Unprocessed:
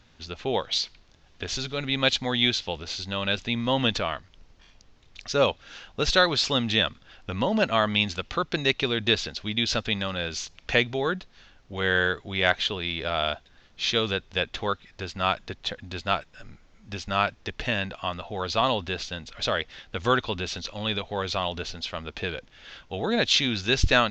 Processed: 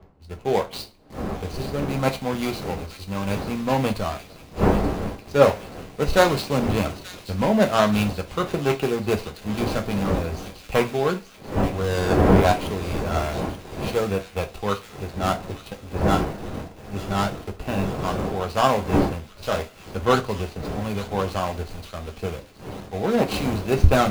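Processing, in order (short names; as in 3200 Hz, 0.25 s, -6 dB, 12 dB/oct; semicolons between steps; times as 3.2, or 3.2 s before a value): median filter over 25 samples; wind noise 480 Hz -35 dBFS; in parallel at -8 dB: bit-crush 6-bit; on the sum: thin delay 0.882 s, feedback 59%, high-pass 2300 Hz, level -8 dB; on a send at -3.5 dB: reverb, pre-delay 3 ms; on the sum: three-band expander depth 40%; gain +1 dB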